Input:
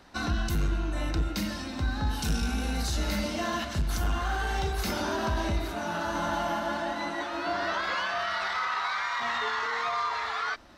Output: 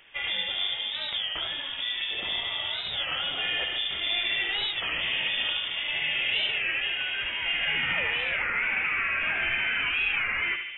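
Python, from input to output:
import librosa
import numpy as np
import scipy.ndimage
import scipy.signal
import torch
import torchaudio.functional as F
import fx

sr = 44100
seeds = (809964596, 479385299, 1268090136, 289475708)

p1 = fx.low_shelf(x, sr, hz=230.0, db=-10.5)
p2 = p1 + fx.echo_filtered(p1, sr, ms=75, feedback_pct=85, hz=1500.0, wet_db=-4, dry=0)
p3 = fx.freq_invert(p2, sr, carrier_hz=3500)
p4 = fx.record_warp(p3, sr, rpm=33.33, depth_cents=160.0)
y = p4 * 10.0 ** (2.0 / 20.0)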